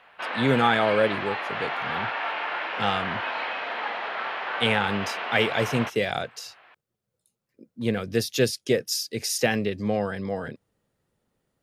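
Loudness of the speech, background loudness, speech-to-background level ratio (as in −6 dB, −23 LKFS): −26.0 LKFS, −30.0 LKFS, 4.0 dB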